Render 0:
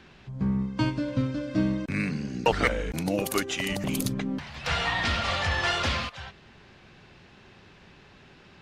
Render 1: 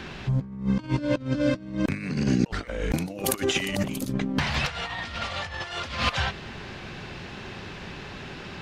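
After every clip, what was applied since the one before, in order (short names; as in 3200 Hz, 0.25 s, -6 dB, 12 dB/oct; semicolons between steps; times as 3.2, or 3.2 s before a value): negative-ratio compressor -34 dBFS, ratio -0.5; gain +7.5 dB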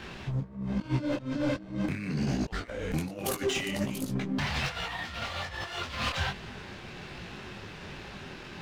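sample leveller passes 1; soft clip -17 dBFS, distortion -13 dB; detuned doubles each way 43 cents; gain -2.5 dB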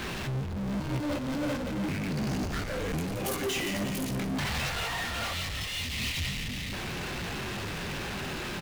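spectral gain 5.34–6.73, 310–1800 Hz -28 dB; frequency-shifting echo 0.172 s, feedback 52%, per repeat -46 Hz, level -11 dB; power-law curve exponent 0.35; gain -7.5 dB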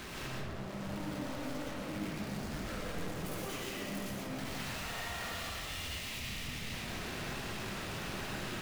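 hard clip -38.5 dBFS, distortion -9 dB; digital reverb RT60 1.6 s, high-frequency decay 0.45×, pre-delay 75 ms, DRR -4 dB; gain -6.5 dB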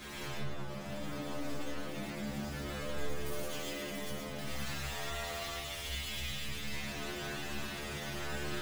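metallic resonator 70 Hz, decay 0.61 s, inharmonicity 0.002; gain +11 dB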